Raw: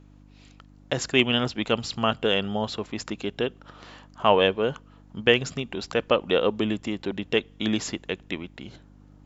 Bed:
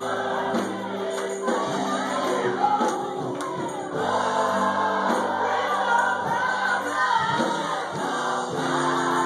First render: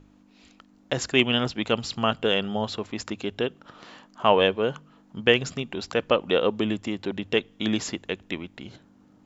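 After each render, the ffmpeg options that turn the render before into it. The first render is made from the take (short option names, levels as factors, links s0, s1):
-af "bandreject=f=50:t=h:w=4,bandreject=f=100:t=h:w=4,bandreject=f=150:t=h:w=4"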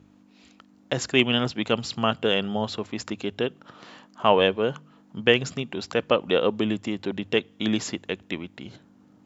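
-af "highpass=100,lowshelf=f=140:g=4.5"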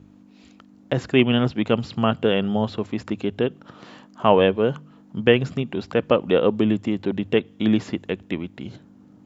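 -filter_complex "[0:a]lowshelf=f=470:g=7.5,acrossover=split=3500[s0][s1];[s1]acompressor=threshold=0.00355:ratio=4:attack=1:release=60[s2];[s0][s2]amix=inputs=2:normalize=0"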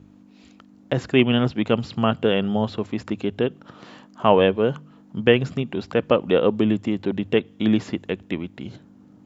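-af anull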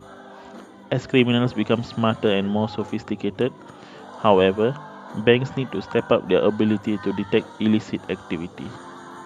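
-filter_complex "[1:a]volume=0.141[s0];[0:a][s0]amix=inputs=2:normalize=0"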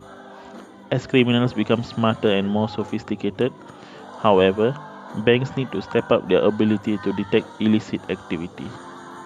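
-af "volume=1.12,alimiter=limit=0.708:level=0:latency=1"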